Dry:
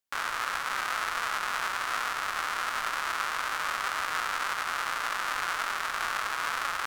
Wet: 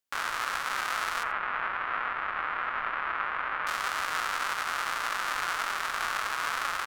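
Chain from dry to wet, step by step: 1.23–3.67 LPF 2500 Hz 24 dB/oct; echo 85 ms -17.5 dB

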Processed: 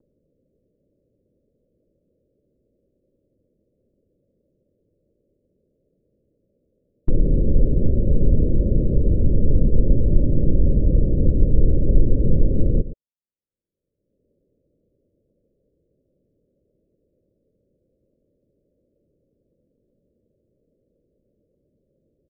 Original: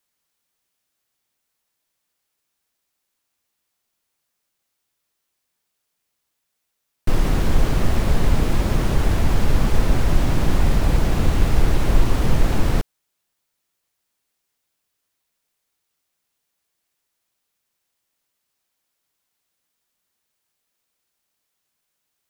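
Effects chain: steep low-pass 580 Hz 96 dB/oct; gate with hold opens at -16 dBFS; upward compressor, threshold -36 dBFS; on a send: echo 0.117 s -14 dB; on the sum: gain +1 dB

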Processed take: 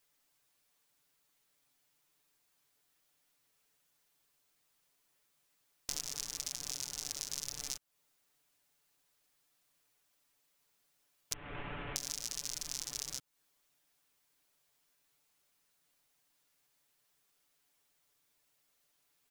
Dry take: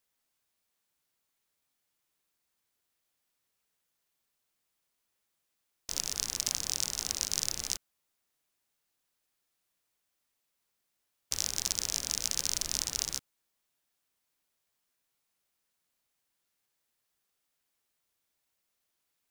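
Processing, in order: 11.33–11.96 CVSD 16 kbps; comb 6.9 ms, depth 75%; compressor 8:1, threshold -37 dBFS, peak gain reduction 14.5 dB; gain +3 dB

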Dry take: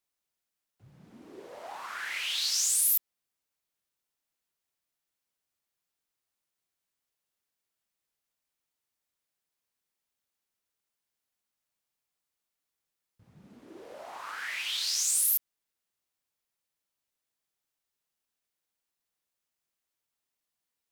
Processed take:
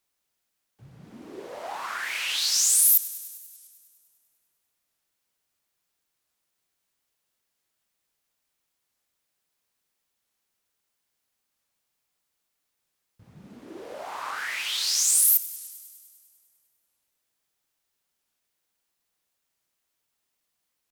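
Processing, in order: dynamic EQ 2900 Hz, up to -4 dB, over -42 dBFS, Q 0.77; on a send: thinning echo 0.1 s, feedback 71%, high-pass 320 Hz, level -18 dB; on the sum: record warp 45 rpm, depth 160 cents; gain +7 dB

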